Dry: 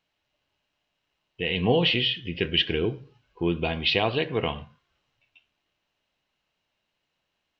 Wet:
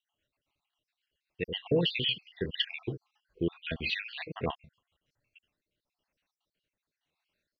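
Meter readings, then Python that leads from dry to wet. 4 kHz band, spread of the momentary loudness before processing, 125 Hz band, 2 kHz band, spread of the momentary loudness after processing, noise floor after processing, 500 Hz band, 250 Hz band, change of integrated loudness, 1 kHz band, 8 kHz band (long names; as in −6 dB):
−7.5 dB, 10 LU, −7.5 dB, −8.0 dB, 12 LU, below −85 dBFS, −8.0 dB, −7.5 dB, −8.0 dB, −12.0 dB, can't be measured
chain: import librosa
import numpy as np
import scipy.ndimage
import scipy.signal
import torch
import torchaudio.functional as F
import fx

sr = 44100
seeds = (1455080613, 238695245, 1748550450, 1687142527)

y = fx.spec_dropout(x, sr, seeds[0], share_pct=59)
y = fx.rotary_switch(y, sr, hz=7.5, then_hz=0.9, switch_at_s=4.67)
y = y * librosa.db_to_amplitude(-1.5)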